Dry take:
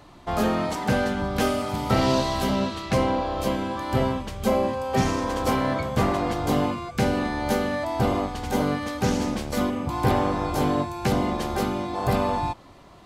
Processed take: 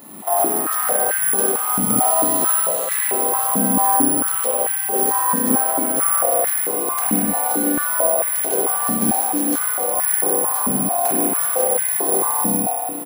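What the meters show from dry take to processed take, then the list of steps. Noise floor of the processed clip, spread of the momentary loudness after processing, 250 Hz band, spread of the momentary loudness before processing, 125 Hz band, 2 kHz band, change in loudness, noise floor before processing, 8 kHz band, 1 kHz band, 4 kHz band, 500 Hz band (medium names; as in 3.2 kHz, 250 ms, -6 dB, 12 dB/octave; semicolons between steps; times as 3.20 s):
-23 dBFS, 3 LU, +0.5 dB, 4 LU, -8.0 dB, +2.5 dB, +8.5 dB, -49 dBFS, +23.0 dB, +4.5 dB, -4.5 dB, +2.0 dB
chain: dynamic bell 2.4 kHz, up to -6 dB, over -41 dBFS, Q 0.71; compression, threshold -29 dBFS, peak gain reduction 12 dB; speakerphone echo 160 ms, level -10 dB; spring tank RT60 2.7 s, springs 31/47 ms, chirp 65 ms, DRR -7.5 dB; careless resampling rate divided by 4×, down none, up zero stuff; step-sequenced high-pass 4.5 Hz 220–1800 Hz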